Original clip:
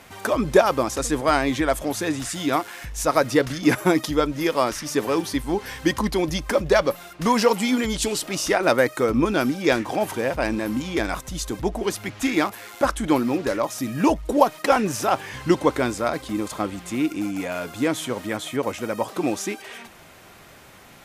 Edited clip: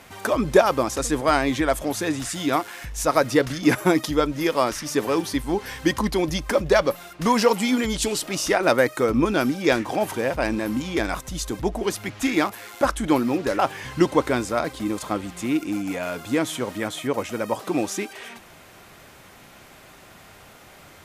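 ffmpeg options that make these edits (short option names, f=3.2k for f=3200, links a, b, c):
-filter_complex "[0:a]asplit=2[a][b];[a]atrim=end=13.592[c];[b]atrim=start=15.078[d];[c][d]acrossfade=d=0.004:c1=hsin:c2=hsin"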